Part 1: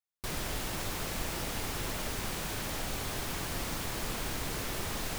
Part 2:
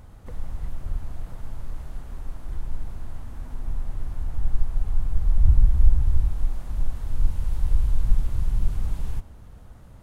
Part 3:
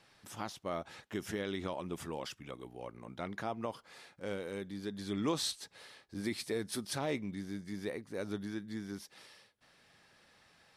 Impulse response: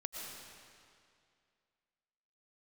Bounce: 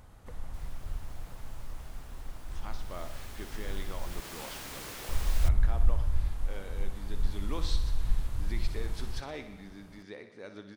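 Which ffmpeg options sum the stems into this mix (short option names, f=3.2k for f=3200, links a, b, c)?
-filter_complex "[0:a]adelay=300,volume=-4.5dB,afade=t=in:st=2.74:d=0.41:silence=0.334965,afade=t=in:st=3.98:d=0.44:silence=0.398107[a];[1:a]volume=-2dB,asplit=3[b][c][d];[b]atrim=end=4.2,asetpts=PTS-STARTPTS,afade=t=out:st=4.196:d=0.004:c=hsin[e];[c]atrim=start=4.2:end=5.09,asetpts=PTS-STARTPTS,volume=0[f];[d]atrim=start=5.09,asetpts=PTS-STARTPTS,afade=t=in:d=0.004:c=hsin[g];[e][f][g]concat=n=3:v=0:a=1[h];[2:a]lowpass=5.2k,adelay=2250,volume=-4.5dB,asplit=3[i][j][k];[j]volume=-11.5dB[l];[k]volume=-9.5dB[m];[3:a]atrim=start_sample=2205[n];[l][n]afir=irnorm=-1:irlink=0[o];[m]aecho=0:1:61|122|183|244|305|366|427|488|549:1|0.57|0.325|0.185|0.106|0.0602|0.0343|0.0195|0.0111[p];[a][h][i][o][p]amix=inputs=5:normalize=0,lowshelf=f=480:g=-6.5"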